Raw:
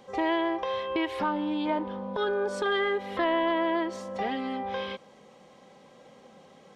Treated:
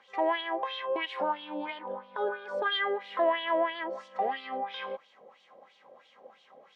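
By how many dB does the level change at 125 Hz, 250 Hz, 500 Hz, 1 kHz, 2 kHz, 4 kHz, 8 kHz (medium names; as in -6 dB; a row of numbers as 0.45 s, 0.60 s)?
no reading, -11.0 dB, -2.0 dB, -1.0 dB, -1.5 dB, +1.0 dB, under -15 dB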